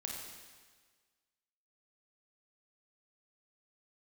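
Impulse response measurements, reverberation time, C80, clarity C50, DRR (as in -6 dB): 1.5 s, 2.5 dB, 0.5 dB, -1.0 dB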